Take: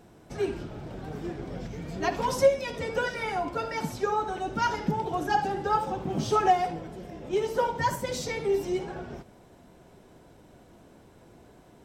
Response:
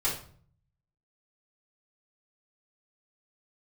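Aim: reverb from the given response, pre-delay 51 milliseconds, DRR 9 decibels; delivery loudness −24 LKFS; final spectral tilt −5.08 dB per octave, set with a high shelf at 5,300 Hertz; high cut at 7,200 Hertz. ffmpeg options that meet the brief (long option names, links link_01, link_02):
-filter_complex "[0:a]lowpass=7200,highshelf=frequency=5300:gain=3.5,asplit=2[link_01][link_02];[1:a]atrim=start_sample=2205,adelay=51[link_03];[link_02][link_03]afir=irnorm=-1:irlink=0,volume=-17dB[link_04];[link_01][link_04]amix=inputs=2:normalize=0,volume=4.5dB"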